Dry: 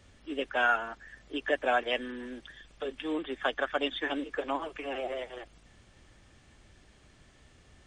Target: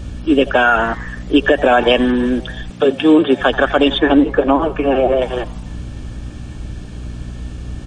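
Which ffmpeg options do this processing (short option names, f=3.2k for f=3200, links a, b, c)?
-filter_complex "[0:a]asuperstop=centerf=2000:order=4:qfactor=6.1,lowshelf=f=380:g=11,asplit=5[a][b][c][d][e];[b]adelay=84,afreqshift=130,volume=-23dB[f];[c]adelay=168,afreqshift=260,volume=-27.4dB[g];[d]adelay=252,afreqshift=390,volume=-31.9dB[h];[e]adelay=336,afreqshift=520,volume=-36.3dB[i];[a][f][g][h][i]amix=inputs=5:normalize=0,aeval=exprs='val(0)+0.00447*(sin(2*PI*60*n/s)+sin(2*PI*2*60*n/s)/2+sin(2*PI*3*60*n/s)/3+sin(2*PI*4*60*n/s)/4+sin(2*PI*5*60*n/s)/5)':c=same,asettb=1/sr,asplit=3[j][k][l];[j]atrim=end=2.704[m];[k]atrim=start=2.7:end=3.41,asetpts=PTS-STARTPTS,afade=t=in:d=0.004:c=qsin,afade=t=out:st=0.706:d=0.004:c=qsin,highpass=f=100:w=0.5412,highpass=f=100:w=1.3066[n];[l]atrim=start=3.406[o];[m][n]acrossfade=d=0.004:c1=hsin:c2=qsin[p];[p][o]acrossfade=d=0.004:c1=qsin:c2=hsin,asettb=1/sr,asplit=3[q][r][s];[q]atrim=end=3.984[t];[r]atrim=start=3.98:end=5.22,asetpts=PTS-STARTPTS,afade=t=in:d=0.004:c=qsin,afade=t=out:st=1.236:d=0.004:c=qsin,highshelf=f=2.5k:g=-11.5[u];[s]atrim=start=5.216[v];[t][u]acrossfade=d=0.004:c1=hsin:c2=qsin[w];[w][v]acrossfade=d=0.004:c1=qsin:c2=hsin,alimiter=level_in=19dB:limit=-1dB:release=50:level=0:latency=1,volume=-1dB"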